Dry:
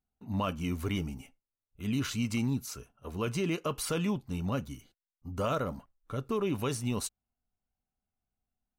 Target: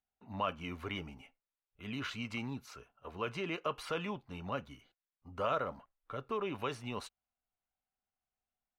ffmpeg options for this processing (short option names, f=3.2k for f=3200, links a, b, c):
-filter_complex "[0:a]acrossover=split=480 3700:gain=0.251 1 0.1[a][b][c];[a][b][c]amix=inputs=3:normalize=0"